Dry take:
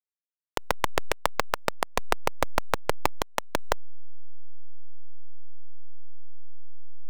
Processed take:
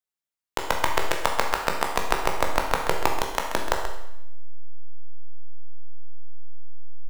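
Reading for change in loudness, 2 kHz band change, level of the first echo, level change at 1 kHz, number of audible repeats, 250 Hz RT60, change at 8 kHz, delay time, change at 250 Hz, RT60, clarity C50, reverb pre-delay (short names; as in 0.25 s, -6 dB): +4.0 dB, +4.5 dB, -10.0 dB, +4.5 dB, 1, 0.80 s, +4.0 dB, 0.132 s, +3.5 dB, 0.80 s, 4.0 dB, 14 ms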